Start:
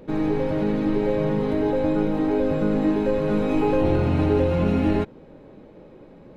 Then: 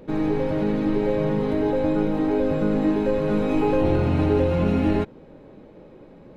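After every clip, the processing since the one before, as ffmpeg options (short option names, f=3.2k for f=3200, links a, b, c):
-af anull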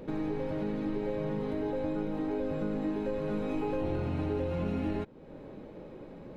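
-af "acompressor=threshold=-39dB:ratio=2"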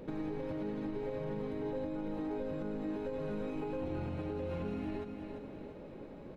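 -af "aecho=1:1:344|688|1032|1376|1720|2064:0.335|0.167|0.0837|0.0419|0.0209|0.0105,alimiter=level_in=3dB:limit=-24dB:level=0:latency=1:release=109,volume=-3dB,volume=-3dB"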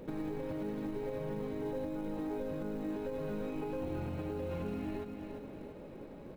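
-af "acrusher=bits=8:mode=log:mix=0:aa=0.000001"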